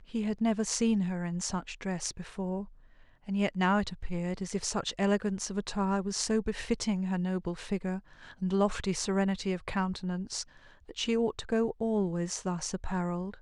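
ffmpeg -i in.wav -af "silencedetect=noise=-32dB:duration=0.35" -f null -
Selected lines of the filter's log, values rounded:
silence_start: 2.62
silence_end: 3.29 | silence_duration: 0.67
silence_start: 7.97
silence_end: 8.42 | silence_duration: 0.45
silence_start: 10.42
silence_end: 10.91 | silence_duration: 0.49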